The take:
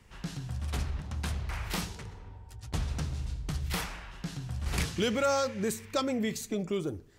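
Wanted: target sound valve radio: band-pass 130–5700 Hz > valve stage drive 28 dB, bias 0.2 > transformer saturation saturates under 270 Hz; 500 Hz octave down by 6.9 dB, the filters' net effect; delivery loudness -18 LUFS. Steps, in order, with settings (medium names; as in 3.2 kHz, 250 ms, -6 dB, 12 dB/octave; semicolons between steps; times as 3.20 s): band-pass 130–5700 Hz; peaking EQ 500 Hz -8 dB; valve stage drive 28 dB, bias 0.2; transformer saturation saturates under 270 Hz; trim +22.5 dB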